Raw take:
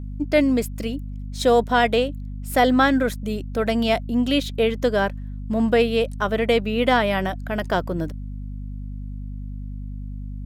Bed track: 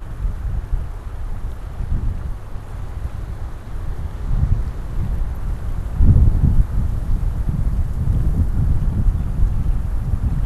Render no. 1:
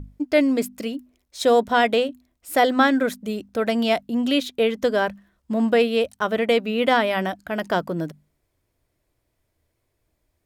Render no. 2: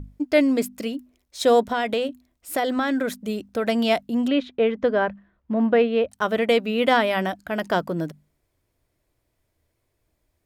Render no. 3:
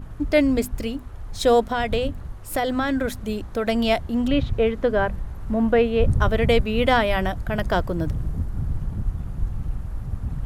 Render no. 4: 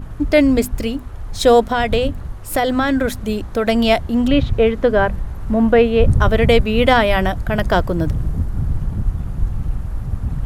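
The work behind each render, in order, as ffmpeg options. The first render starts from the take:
-af "bandreject=f=50:t=h:w=6,bandreject=f=100:t=h:w=6,bandreject=f=150:t=h:w=6,bandreject=f=200:t=h:w=6,bandreject=f=250:t=h:w=6"
-filter_complex "[0:a]asettb=1/sr,asplit=3[s0][s1][s2];[s0]atrim=end=1.664[s3];[s1]atrim=start=1.66:end=3.65,asetpts=PTS-STARTPTS,afade=t=in:d=0.004:c=qsin,afade=t=out:st=1.986:d=0.004:c=qsin,acompressor=threshold=0.112:ratio=6:attack=3.2:release=140:knee=1:detection=peak[s4];[s2]atrim=start=3.646[s5];[s3][s4]acrossfade=d=0.004:c1=hsin:c2=qsin[s6];[s6][s5]acrossfade=d=0.004:c1=qsin:c2=hsin,asplit=3[s7][s8][s9];[s7]afade=t=out:st=4.27:d=0.02[s10];[s8]lowpass=2200,afade=t=in:st=4.27:d=0.02,afade=t=out:st=6.11:d=0.02[s11];[s9]afade=t=in:st=6.11:d=0.02[s12];[s10][s11][s12]amix=inputs=3:normalize=0"
-filter_complex "[1:a]volume=0.376[s0];[0:a][s0]amix=inputs=2:normalize=0"
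-af "volume=2,alimiter=limit=0.794:level=0:latency=1"

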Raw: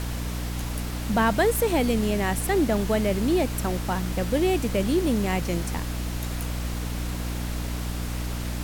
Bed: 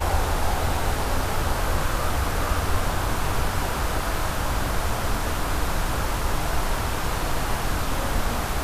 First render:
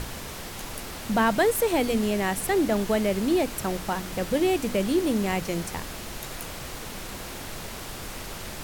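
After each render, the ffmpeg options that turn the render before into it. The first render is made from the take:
-af "bandreject=f=60:t=h:w=6,bandreject=f=120:t=h:w=6,bandreject=f=180:t=h:w=6,bandreject=f=240:t=h:w=6,bandreject=f=300:t=h:w=6"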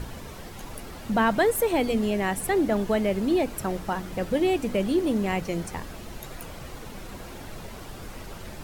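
-af "afftdn=nr=9:nf=-38"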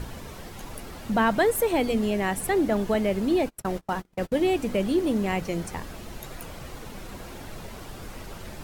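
-filter_complex "[0:a]asettb=1/sr,asplit=3[s0][s1][s2];[s0]atrim=end=2.944[s3];[s1]atrim=start=2.94:end=4.47,asetpts=PTS-STARTPTS,afade=t=in:d=0.004:c=qsin,afade=t=out:st=1.526:d=0.004:c=qsin,agate=range=0.02:threshold=0.0251:ratio=16:release=100:detection=peak[s4];[s2]atrim=start=4.466[s5];[s3][s4]acrossfade=d=0.004:c1=hsin:c2=qsin[s6];[s6][s5]acrossfade=d=0.004:c1=qsin:c2=hsin"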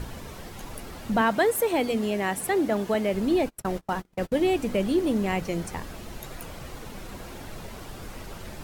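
-filter_complex "[0:a]asettb=1/sr,asplit=3[s0][s1][s2];[s0]atrim=end=1.214[s3];[s1]atrim=start=1.21:end=3.14,asetpts=PTS-STARTPTS,afade=t=in:d=0.004:c=qsin,afade=t=out:st=1.926:d=0.004:c=qsin,highpass=f=180:p=1[s4];[s2]atrim=start=3.136[s5];[s3][s4]acrossfade=d=0.004:c1=hsin:c2=qsin[s6];[s6][s5]acrossfade=d=0.004:c1=qsin:c2=hsin"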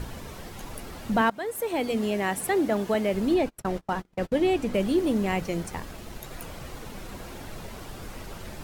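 -filter_complex "[0:a]asettb=1/sr,asplit=3[s0][s1][s2];[s0]atrim=end=3.344[s3];[s1]atrim=start=3.34:end=4.74,asetpts=PTS-STARTPTS,afade=t=in:d=0.004:c=qsin,afade=t=out:st=1.396:d=0.004:c=qsin,highshelf=f=8600:g=-8[s4];[s2]atrim=start=4.736[s5];[s3][s4]acrossfade=d=0.004:c1=hsin:c2=qsin[s6];[s6][s5]acrossfade=d=0.004:c1=qsin:c2=hsin,asettb=1/sr,asplit=3[s7][s8][s9];[s7]atrim=end=5.464[s10];[s8]atrim=start=5.46:end=6.33,asetpts=PTS-STARTPTS,afade=t=in:d=0.004:c=qsin,afade=t=out:st=0.866:d=0.004:c=qsin,aeval=exprs='sgn(val(0))*max(abs(val(0))-0.00211,0)':c=same[s11];[s9]atrim=start=6.326[s12];[s10][s11]acrossfade=d=0.004:c1=hsin:c2=qsin[s13];[s13][s12]acrossfade=d=0.004:c1=qsin:c2=hsin,asplit=2[s14][s15];[s14]atrim=end=1.3,asetpts=PTS-STARTPTS,afade=t=out:st=1.296:d=0.004:c=hsin:silence=0.125893[s16];[s15]atrim=start=1.3,asetpts=PTS-STARTPTS,afade=t=in:d=0.71:silence=0.125893[s17];[s16][s17]concat=n=2:v=0:a=1"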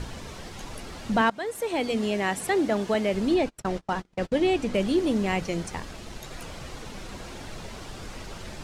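-af "lowpass=6800,highshelf=f=3500:g=7"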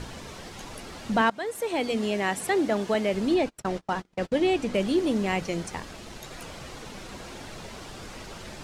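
-af "lowshelf=f=91:g=-7"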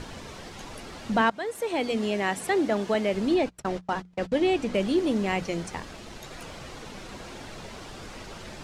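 -af "highshelf=f=9100:g=-5.5,bandreject=f=60:t=h:w=6,bandreject=f=120:t=h:w=6,bandreject=f=180:t=h:w=6"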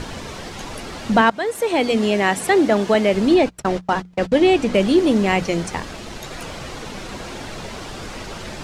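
-af "volume=2.82,alimiter=limit=0.708:level=0:latency=1"

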